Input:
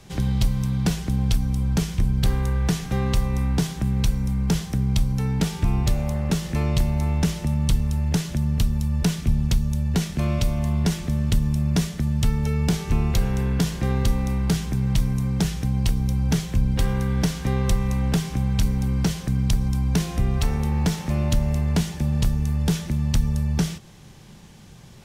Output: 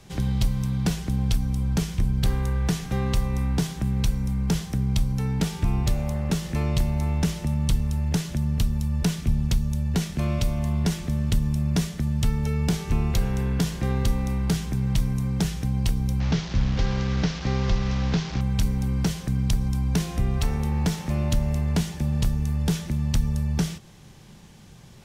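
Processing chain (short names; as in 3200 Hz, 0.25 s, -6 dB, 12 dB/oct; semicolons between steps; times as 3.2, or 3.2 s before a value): 16.2–18.41 delta modulation 32 kbps, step -27.5 dBFS; gain -2 dB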